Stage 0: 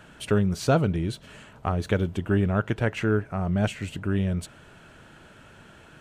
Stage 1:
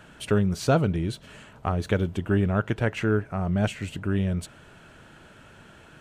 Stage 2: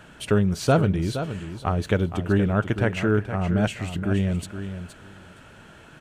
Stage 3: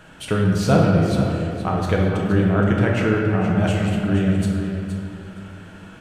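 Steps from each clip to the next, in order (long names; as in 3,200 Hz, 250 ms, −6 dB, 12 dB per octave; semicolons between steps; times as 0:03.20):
no processing that can be heard
repeating echo 469 ms, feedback 16%, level −10 dB; level +2 dB
convolution reverb RT60 2.4 s, pre-delay 6 ms, DRR −1.5 dB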